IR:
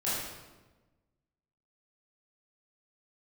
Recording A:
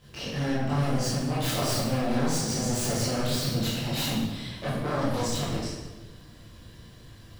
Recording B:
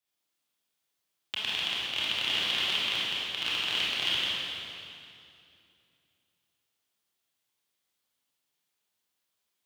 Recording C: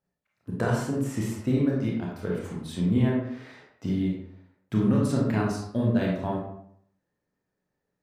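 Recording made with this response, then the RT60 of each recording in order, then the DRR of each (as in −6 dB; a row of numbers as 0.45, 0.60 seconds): A; 1.2, 2.6, 0.70 seconds; −10.5, −8.0, −4.0 decibels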